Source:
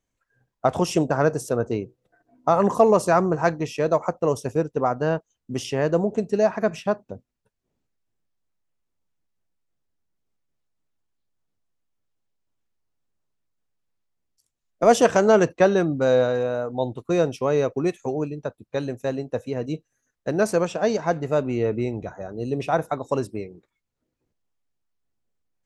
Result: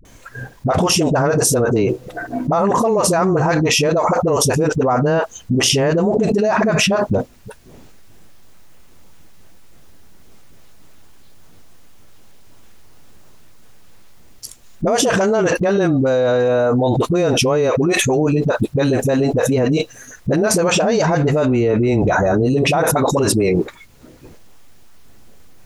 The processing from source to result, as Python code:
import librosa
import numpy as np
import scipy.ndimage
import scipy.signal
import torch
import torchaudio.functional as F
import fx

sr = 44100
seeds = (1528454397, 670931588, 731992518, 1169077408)

y = fx.notch(x, sr, hz=7800.0, q=28.0)
y = fx.dispersion(y, sr, late='highs', ms=51.0, hz=370.0)
y = fx.env_flatten(y, sr, amount_pct=100)
y = F.gain(torch.from_numpy(y), -4.5).numpy()